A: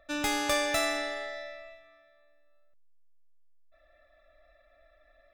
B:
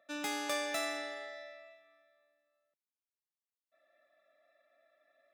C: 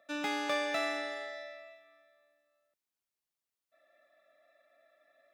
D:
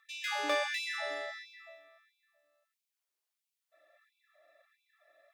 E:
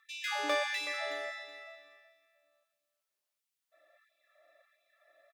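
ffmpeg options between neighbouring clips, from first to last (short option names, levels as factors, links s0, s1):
-af "highpass=f=180:w=0.5412,highpass=f=180:w=1.3066,volume=0.422"
-filter_complex "[0:a]acrossover=split=4400[s0][s1];[s1]acompressor=threshold=0.00126:ratio=4:attack=1:release=60[s2];[s0][s2]amix=inputs=2:normalize=0,volume=1.5"
-af "afftfilt=real='re*gte(b*sr/1024,260*pow(2200/260,0.5+0.5*sin(2*PI*1.5*pts/sr)))':imag='im*gte(b*sr/1024,260*pow(2200/260,0.5+0.5*sin(2*PI*1.5*pts/sr)))':win_size=1024:overlap=0.75,volume=1.26"
-af "aecho=1:1:373|746:0.211|0.0444"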